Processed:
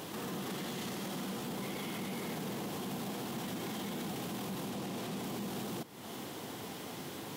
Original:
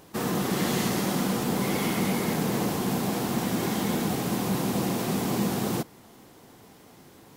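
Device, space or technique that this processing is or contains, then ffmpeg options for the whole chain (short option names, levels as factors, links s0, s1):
broadcast voice chain: -filter_complex "[0:a]highpass=110,deesser=0.55,acompressor=threshold=0.00794:ratio=4,equalizer=f=3200:t=o:w=0.6:g=5,alimiter=level_in=5.96:limit=0.0631:level=0:latency=1:release=14,volume=0.168,asettb=1/sr,asplit=3[s0][s1][s2];[s0]atrim=end=4.704[s3];[s1]atrim=start=4.7:end=5.23,asetpts=PTS-STARTPTS,afade=t=in:d=0.004:c=qsin,afade=t=out:st=0.526:d=0.004:c=qsin,highshelf=f=11000:g=-5.5[s4];[s2]atrim=start=5.226[s5];[s3][s4]acrossfade=d=0.004:c1=hsin:c2=qsin[s6];[s6][s5]acrossfade=d=0.004:c1=qsin:c2=hsin,volume=2.51"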